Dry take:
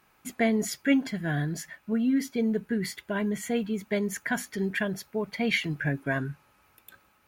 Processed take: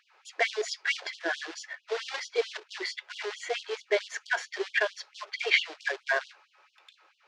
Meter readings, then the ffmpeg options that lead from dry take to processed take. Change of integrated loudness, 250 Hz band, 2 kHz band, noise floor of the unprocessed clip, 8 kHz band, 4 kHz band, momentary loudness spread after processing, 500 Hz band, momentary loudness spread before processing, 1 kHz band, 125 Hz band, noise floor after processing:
-2.0 dB, -23.0 dB, +3.0 dB, -65 dBFS, -4.0 dB, +5.0 dB, 12 LU, -1.0 dB, 7 LU, +0.5 dB, under -40 dB, -69 dBFS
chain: -af "acrusher=bits=3:mode=log:mix=0:aa=0.000001,lowpass=f=5.4k:w=0.5412,lowpass=f=5.4k:w=1.3066,afftfilt=real='re*gte(b*sr/1024,320*pow(2900/320,0.5+0.5*sin(2*PI*4.5*pts/sr)))':imag='im*gte(b*sr/1024,320*pow(2900/320,0.5+0.5*sin(2*PI*4.5*pts/sr)))':win_size=1024:overlap=0.75,volume=4dB"

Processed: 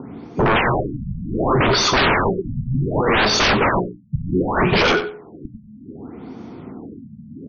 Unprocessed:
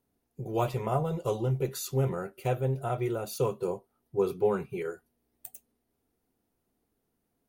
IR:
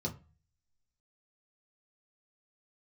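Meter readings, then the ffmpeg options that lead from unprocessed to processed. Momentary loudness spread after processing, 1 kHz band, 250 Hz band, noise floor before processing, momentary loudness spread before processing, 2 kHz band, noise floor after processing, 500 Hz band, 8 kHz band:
21 LU, +16.0 dB, +14.5 dB, -79 dBFS, 14 LU, +26.5 dB, -43 dBFS, +9.0 dB, +13.5 dB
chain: -filter_complex "[0:a]afftfilt=real='re*lt(hypot(re,im),0.178)':imag='im*lt(hypot(re,im),0.178)':win_size=1024:overlap=0.75,highpass=97,bandreject=f=60:t=h:w=6,bandreject=f=120:t=h:w=6,bandreject=f=180:t=h:w=6,bandreject=f=240:t=h:w=6,bandreject=f=300:t=h:w=6,bandreject=f=360:t=h:w=6,bandreject=f=420:t=h:w=6,aecho=1:1:0.9:0.37,asplit=2[a][b];[b]highpass=f=720:p=1,volume=20dB,asoftclip=type=tanh:threshold=-21.5dB[c];[a][c]amix=inputs=2:normalize=0,lowpass=f=1.3k:p=1,volume=-6dB,acrossover=split=360|1200|3100[d][e][f][g];[d]acompressor=mode=upward:threshold=-51dB:ratio=2.5[h];[e]volume=27.5dB,asoftclip=hard,volume=-27.5dB[i];[f]alimiter=level_in=14.5dB:limit=-24dB:level=0:latency=1:release=97,volume=-14.5dB[j];[h][i][j][g]amix=inputs=4:normalize=0,aeval=exprs='0.0891*sin(PI/2*6.31*val(0)/0.0891)':c=same,aecho=1:1:93|186:0.266|0.0479,afftfilt=real='re*lt(b*sr/1024,220*pow(6700/220,0.5+0.5*sin(2*PI*0.66*pts/sr)))':imag='im*lt(b*sr/1024,220*pow(6700/220,0.5+0.5*sin(2*PI*0.66*pts/sr)))':win_size=1024:overlap=0.75,volume=8.5dB"

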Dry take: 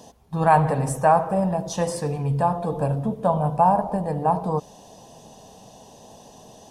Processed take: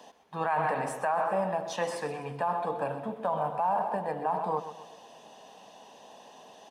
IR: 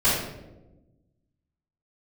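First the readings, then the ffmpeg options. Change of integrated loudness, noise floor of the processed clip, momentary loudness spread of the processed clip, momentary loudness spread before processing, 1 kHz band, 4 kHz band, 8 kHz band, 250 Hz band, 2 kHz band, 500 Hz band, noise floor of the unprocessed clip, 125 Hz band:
-8.5 dB, -53 dBFS, 9 LU, 8 LU, -8.0 dB, -4.0 dB, -10.5 dB, -14.0 dB, -3.0 dB, -7.5 dB, -48 dBFS, -18.5 dB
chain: -filter_complex "[0:a]tiltshelf=f=1.1k:g=-9,acrossover=split=270[a][b];[b]acrusher=bits=6:mode=log:mix=0:aa=0.000001[c];[a][c]amix=inputs=2:normalize=0,acrossover=split=190 2800:gain=0.1 1 0.0891[d][e][f];[d][e][f]amix=inputs=3:normalize=0,aecho=1:1:127|254|381|508:0.224|0.101|0.0453|0.0204,alimiter=limit=-19.5dB:level=0:latency=1:release=25"

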